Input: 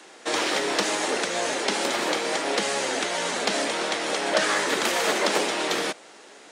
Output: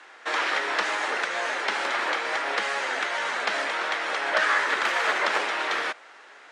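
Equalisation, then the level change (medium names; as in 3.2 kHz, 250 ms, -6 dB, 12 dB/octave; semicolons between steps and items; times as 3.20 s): band-pass filter 1.5 kHz, Q 1.3; +4.5 dB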